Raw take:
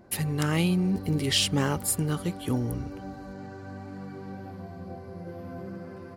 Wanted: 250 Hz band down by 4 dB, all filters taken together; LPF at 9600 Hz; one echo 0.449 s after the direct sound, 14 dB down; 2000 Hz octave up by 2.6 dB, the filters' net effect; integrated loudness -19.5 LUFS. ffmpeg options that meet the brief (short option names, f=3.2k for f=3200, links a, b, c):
-af "lowpass=9.6k,equalizer=f=250:t=o:g=-6.5,equalizer=f=2k:t=o:g=3.5,aecho=1:1:449:0.2,volume=8.5dB"